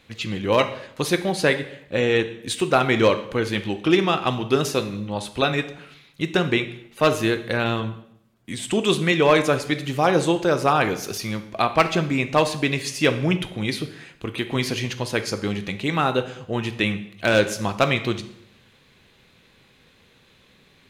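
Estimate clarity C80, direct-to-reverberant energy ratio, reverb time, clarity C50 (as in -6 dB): 15.5 dB, 8.5 dB, 0.70 s, 12.5 dB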